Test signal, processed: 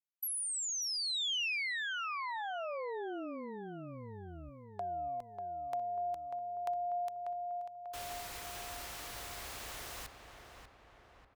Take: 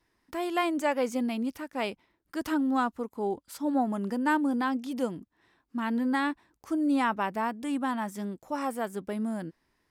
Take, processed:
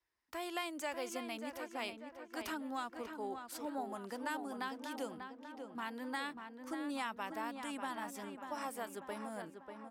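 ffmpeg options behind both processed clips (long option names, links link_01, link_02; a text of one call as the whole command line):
ffmpeg -i in.wav -filter_complex "[0:a]equalizer=frequency=190:width=0.61:gain=-13,agate=range=-9dB:threshold=-55dB:ratio=16:detection=peak,highpass=44,acrossover=split=260|2800[link_01][link_02][link_03];[link_01]acompressor=threshold=-48dB:ratio=4[link_04];[link_02]acompressor=threshold=-36dB:ratio=4[link_05];[link_03]acompressor=threshold=-33dB:ratio=4[link_06];[link_04][link_05][link_06]amix=inputs=3:normalize=0,asplit=2[link_07][link_08];[link_08]adelay=592,lowpass=frequency=2400:poles=1,volume=-6.5dB,asplit=2[link_09][link_10];[link_10]adelay=592,lowpass=frequency=2400:poles=1,volume=0.55,asplit=2[link_11][link_12];[link_12]adelay=592,lowpass=frequency=2400:poles=1,volume=0.55,asplit=2[link_13][link_14];[link_14]adelay=592,lowpass=frequency=2400:poles=1,volume=0.55,asplit=2[link_15][link_16];[link_16]adelay=592,lowpass=frequency=2400:poles=1,volume=0.55,asplit=2[link_17][link_18];[link_18]adelay=592,lowpass=frequency=2400:poles=1,volume=0.55,asplit=2[link_19][link_20];[link_20]adelay=592,lowpass=frequency=2400:poles=1,volume=0.55[link_21];[link_09][link_11][link_13][link_15][link_17][link_19][link_21]amix=inputs=7:normalize=0[link_22];[link_07][link_22]amix=inputs=2:normalize=0,volume=-3.5dB" out.wav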